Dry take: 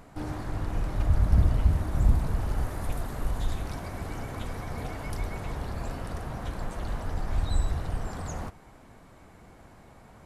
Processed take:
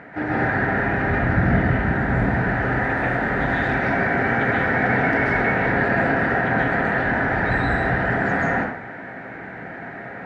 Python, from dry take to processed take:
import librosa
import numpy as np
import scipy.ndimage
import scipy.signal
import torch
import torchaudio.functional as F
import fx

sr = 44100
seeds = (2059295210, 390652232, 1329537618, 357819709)

p1 = fx.lowpass_res(x, sr, hz=1800.0, q=4.4)
p2 = fx.peak_eq(p1, sr, hz=1100.0, db=-14.0, octaves=0.26)
p3 = fx.rev_plate(p2, sr, seeds[0], rt60_s=0.62, hf_ratio=0.85, predelay_ms=120, drr_db=-6.0)
p4 = fx.rider(p3, sr, range_db=4, speed_s=2.0)
p5 = p3 + (p4 * 10.0 ** (0.0 / 20.0))
p6 = scipy.signal.sosfilt(scipy.signal.butter(2, 170.0, 'highpass', fs=sr, output='sos'), p5)
y = p6 * 10.0 ** (2.5 / 20.0)